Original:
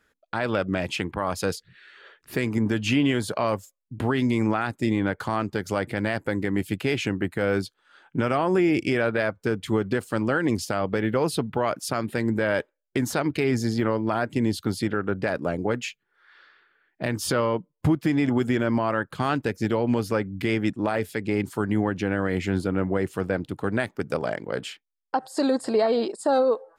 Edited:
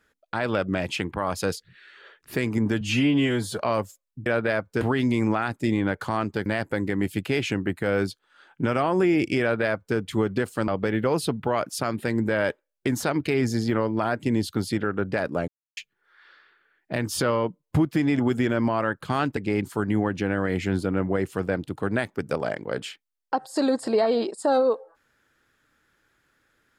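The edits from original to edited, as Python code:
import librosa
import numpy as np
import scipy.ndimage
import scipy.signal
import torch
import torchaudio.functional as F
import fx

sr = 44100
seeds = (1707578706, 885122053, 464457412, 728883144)

y = fx.edit(x, sr, fx.stretch_span(start_s=2.81, length_s=0.52, factor=1.5),
    fx.cut(start_s=5.65, length_s=0.36),
    fx.duplicate(start_s=8.96, length_s=0.55, to_s=4.0),
    fx.cut(start_s=10.23, length_s=0.55),
    fx.silence(start_s=15.58, length_s=0.29),
    fx.cut(start_s=19.47, length_s=1.71), tone=tone)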